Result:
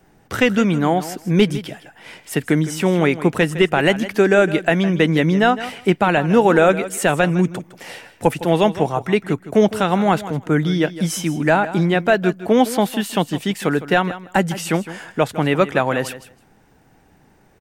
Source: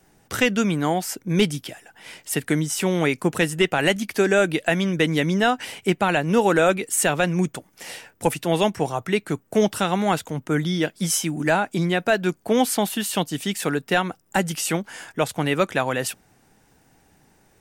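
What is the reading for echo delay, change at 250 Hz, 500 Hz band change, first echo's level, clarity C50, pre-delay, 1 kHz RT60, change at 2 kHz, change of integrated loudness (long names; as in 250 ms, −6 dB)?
159 ms, +5.0 dB, +5.0 dB, −14.5 dB, no reverb audible, no reverb audible, no reverb audible, +3.0 dB, +4.0 dB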